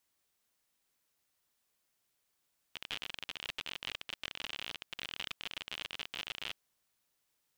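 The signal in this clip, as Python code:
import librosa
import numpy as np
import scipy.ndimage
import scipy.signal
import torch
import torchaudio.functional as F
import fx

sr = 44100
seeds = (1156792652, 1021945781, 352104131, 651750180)

y = fx.geiger_clicks(sr, seeds[0], length_s=3.78, per_s=57.0, level_db=-23.5)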